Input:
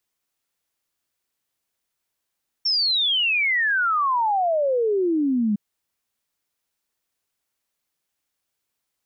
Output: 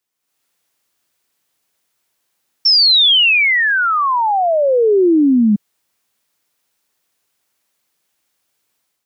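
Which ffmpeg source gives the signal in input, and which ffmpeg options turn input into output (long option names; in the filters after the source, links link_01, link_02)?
-f lavfi -i "aevalsrc='0.126*clip(min(t,2.91-t)/0.01,0,1)*sin(2*PI*5500*2.91/log(200/5500)*(exp(log(200/5500)*t/2.91)-1))':duration=2.91:sample_rate=44100"
-filter_complex "[0:a]acrossover=split=400|3000[link_01][link_02][link_03];[link_02]acompressor=threshold=-25dB:ratio=6[link_04];[link_01][link_04][link_03]amix=inputs=3:normalize=0,highpass=frequency=110:poles=1,dynaudnorm=framelen=110:gausssize=5:maxgain=10.5dB"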